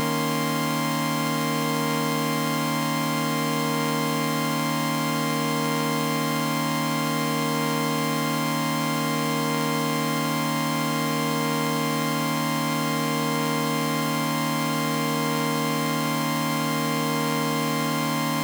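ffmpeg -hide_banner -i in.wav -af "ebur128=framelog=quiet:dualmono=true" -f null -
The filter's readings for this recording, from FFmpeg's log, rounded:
Integrated loudness:
  I:         -21.3 LUFS
  Threshold: -31.2 LUFS
Loudness range:
  LRA:         0.1 LU
  Threshold: -41.2 LUFS
  LRA low:   -21.3 LUFS
  LRA high:  -21.2 LUFS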